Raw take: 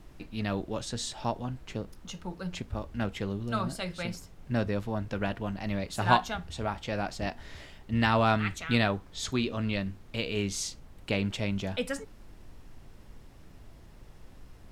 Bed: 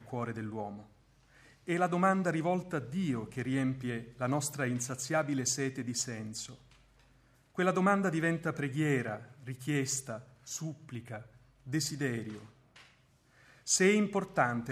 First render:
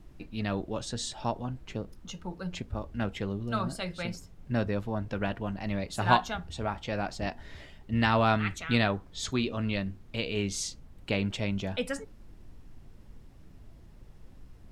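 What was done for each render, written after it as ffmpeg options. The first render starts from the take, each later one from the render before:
-af "afftdn=nr=6:nf=-52"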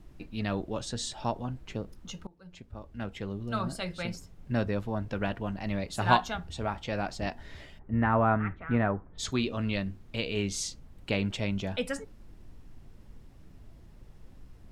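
-filter_complex "[0:a]asplit=3[s0][s1][s2];[s0]afade=t=out:st=7.78:d=0.02[s3];[s1]lowpass=f=1700:w=0.5412,lowpass=f=1700:w=1.3066,afade=t=in:st=7.78:d=0.02,afade=t=out:st=9.18:d=0.02[s4];[s2]afade=t=in:st=9.18:d=0.02[s5];[s3][s4][s5]amix=inputs=3:normalize=0,asplit=2[s6][s7];[s6]atrim=end=2.27,asetpts=PTS-STARTPTS,afade=t=out:st=2.266:d=0.004:c=hsin:silence=0.0668344[s8];[s7]atrim=start=2.27,asetpts=PTS-STARTPTS,afade=t=in:d=1.48:silence=0.0668344[s9];[s8][s9]concat=n=2:v=0:a=1"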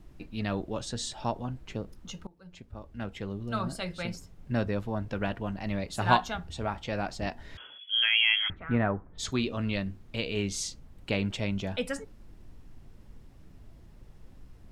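-filter_complex "[0:a]asettb=1/sr,asplit=3[s0][s1][s2];[s0]atrim=end=7.574[s3];[s1]atrim=start=7.57:end=8.5,asetpts=PTS-STARTPTS,afade=t=in:d=0.004:c=qsin,afade=t=out:st=0.926:d=0.004:c=qsin,lowpass=f=2900:t=q:w=0.5098,lowpass=f=2900:t=q:w=0.6013,lowpass=f=2900:t=q:w=0.9,lowpass=f=2900:t=q:w=2.563,afreqshift=-3400[s4];[s2]atrim=start=8.496[s5];[s3][s4]acrossfade=d=0.004:c1=hsin:c2=qsin[s6];[s6][s5]acrossfade=d=0.004:c1=qsin:c2=hsin"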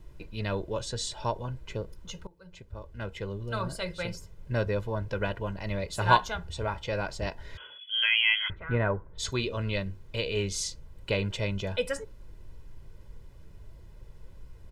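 -af "aecho=1:1:2:0.62"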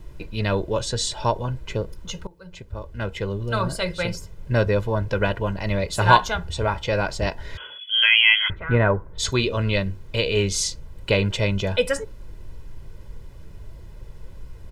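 -af "volume=2.66,alimiter=limit=0.891:level=0:latency=1"

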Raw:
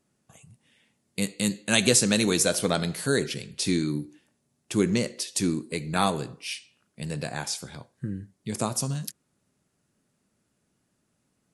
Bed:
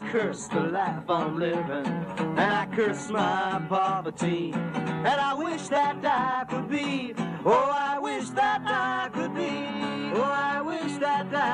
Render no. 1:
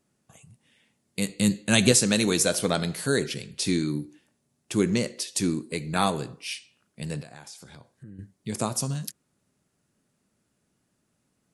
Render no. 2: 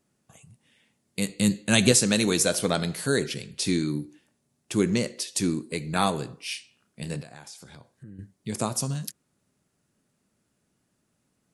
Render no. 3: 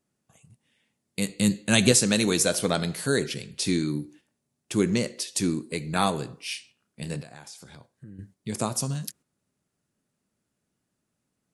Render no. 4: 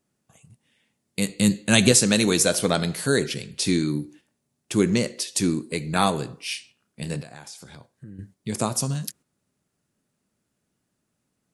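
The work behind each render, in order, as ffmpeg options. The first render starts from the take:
-filter_complex "[0:a]asettb=1/sr,asplit=3[s0][s1][s2];[s0]atrim=end=1.294[s3];[s1]atrim=start=1.29:end=1.92,asetpts=PTS-STARTPTS,afade=t=in:d=0.004:c=qsin,afade=t=out:st=0.626:d=0.004:c=qsin,lowshelf=f=190:g=10[s4];[s2]atrim=start=1.916[s5];[s3][s4]acrossfade=d=0.004:c1=hsin:c2=qsin[s6];[s6][s5]acrossfade=d=0.004:c1=qsin:c2=hsin,asettb=1/sr,asplit=3[s7][s8][s9];[s7]atrim=end=7.214[s10];[s8]atrim=start=7.21:end=8.19,asetpts=PTS-STARTPTS,afade=t=in:d=0.004:c=qsin,afade=t=out:st=0.976:d=0.004:c=qsin,acompressor=threshold=0.00562:ratio=3:attack=3.2:release=140:knee=1:detection=peak[s11];[s9]atrim=start=8.186[s12];[s10][s11]acrossfade=d=0.004:c1=hsin:c2=qsin[s13];[s13][s12]acrossfade=d=0.004:c1=qsin:c2=hsin"
-filter_complex "[0:a]asettb=1/sr,asplit=3[s0][s1][s2];[s0]atrim=end=6.434[s3];[s1]atrim=start=6.43:end=7.16,asetpts=PTS-STARTPTS,afade=t=in:d=0.004:c=qsin,afade=t=out:st=0.726:d=0.004:c=qsin,asplit=2[s4][s5];[s5]adelay=29,volume=0.355[s6];[s4][s6]amix=inputs=2:normalize=0,atrim=end_sample=32193[s7];[s2]atrim=start=7.156[s8];[s3][s7]acrossfade=d=0.004:c1=hsin:c2=qsin[s9];[s9][s8]acrossfade=d=0.004:c1=qsin:c2=hsin"
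-af "agate=range=0.501:threshold=0.00282:ratio=16:detection=peak"
-af "volume=1.41,alimiter=limit=0.794:level=0:latency=1"

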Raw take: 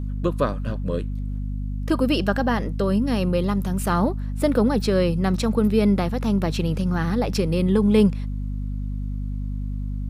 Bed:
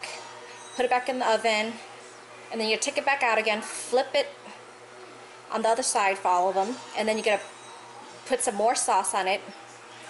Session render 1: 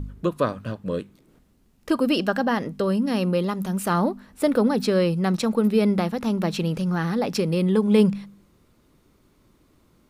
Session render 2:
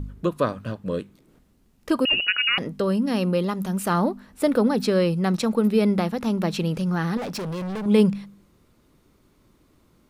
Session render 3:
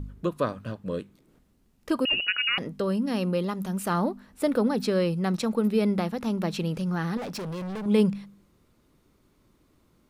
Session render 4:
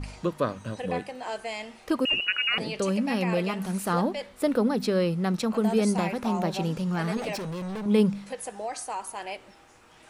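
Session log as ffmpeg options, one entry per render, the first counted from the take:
-af "bandreject=f=50:t=h:w=4,bandreject=f=100:t=h:w=4,bandreject=f=150:t=h:w=4,bandreject=f=200:t=h:w=4,bandreject=f=250:t=h:w=4"
-filter_complex "[0:a]asettb=1/sr,asplit=3[s0][s1][s2];[s0]atrim=end=2.054[s3];[s1]atrim=start=2.05:end=2.58,asetpts=PTS-STARTPTS,afade=t=in:d=0.004:c=qsin,afade=t=out:st=0.526:d=0.004:c=qsin,lowpass=f=2600:t=q:w=0.5098,lowpass=f=2600:t=q:w=0.6013,lowpass=f=2600:t=q:w=0.9,lowpass=f=2600:t=q:w=2.563,afreqshift=-3100[s4];[s2]atrim=start=2.576[s5];[s3][s4]acrossfade=d=0.004:c1=hsin:c2=qsin[s6];[s6][s5]acrossfade=d=0.004:c1=qsin:c2=hsin,asettb=1/sr,asplit=3[s7][s8][s9];[s7]atrim=end=7.174[s10];[s8]atrim=start=7.17:end=7.86,asetpts=PTS-STARTPTS,afade=t=in:d=0.004:c=qsin,afade=t=out:st=0.686:d=0.004:c=qsin,volume=25.1,asoftclip=hard,volume=0.0398[s11];[s9]atrim=start=7.856[s12];[s10][s11]acrossfade=d=0.004:c1=hsin:c2=qsin[s13];[s13][s12]acrossfade=d=0.004:c1=qsin:c2=hsin"
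-af "volume=0.631"
-filter_complex "[1:a]volume=0.299[s0];[0:a][s0]amix=inputs=2:normalize=0"

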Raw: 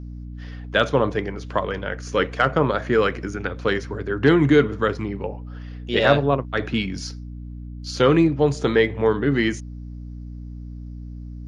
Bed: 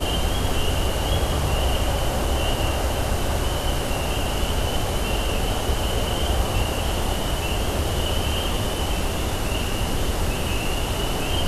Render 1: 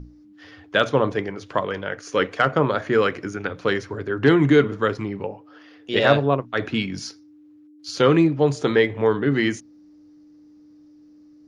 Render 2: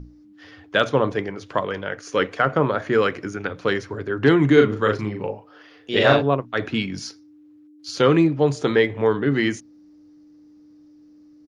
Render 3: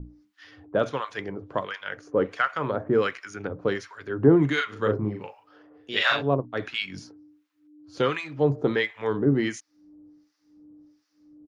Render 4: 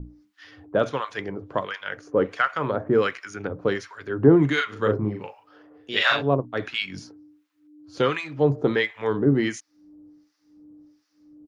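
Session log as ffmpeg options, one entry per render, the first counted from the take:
-af "bandreject=f=60:t=h:w=6,bandreject=f=120:t=h:w=6,bandreject=f=180:t=h:w=6,bandreject=f=240:t=h:w=6"
-filter_complex "[0:a]asettb=1/sr,asplit=3[s0][s1][s2];[s0]atrim=end=2.394[s3];[s1]atrim=start=2.39:end=2.8,asetpts=PTS-STARTPTS,afade=t=in:d=0.004:c=qsin,afade=t=out:st=0.406:d=0.004:c=qsin,acrossover=split=2600[s4][s5];[s5]acompressor=threshold=0.00794:ratio=4:attack=1:release=60[s6];[s4][s6]amix=inputs=2:normalize=0[s7];[s2]atrim=start=2.796[s8];[s3][s7]acrossfade=d=0.004:c1=hsin:c2=qsin[s9];[s9][s8]acrossfade=d=0.004:c1=qsin:c2=hsin,asplit=3[s10][s11][s12];[s10]afade=t=out:st=4.56:d=0.02[s13];[s11]asplit=2[s14][s15];[s15]adelay=38,volume=0.668[s16];[s14][s16]amix=inputs=2:normalize=0,afade=t=in:st=4.56:d=0.02,afade=t=out:st=6.21:d=0.02[s17];[s12]afade=t=in:st=6.21:d=0.02[s18];[s13][s17][s18]amix=inputs=3:normalize=0"
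-filter_complex "[0:a]acrossover=split=1000[s0][s1];[s0]aeval=exprs='val(0)*(1-1/2+1/2*cos(2*PI*1.4*n/s))':c=same[s2];[s1]aeval=exprs='val(0)*(1-1/2-1/2*cos(2*PI*1.4*n/s))':c=same[s3];[s2][s3]amix=inputs=2:normalize=0"
-af "volume=1.26"

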